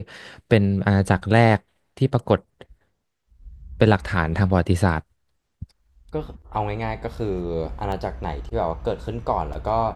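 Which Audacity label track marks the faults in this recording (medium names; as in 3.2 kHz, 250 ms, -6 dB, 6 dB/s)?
7.920000	7.920000	dropout 2.4 ms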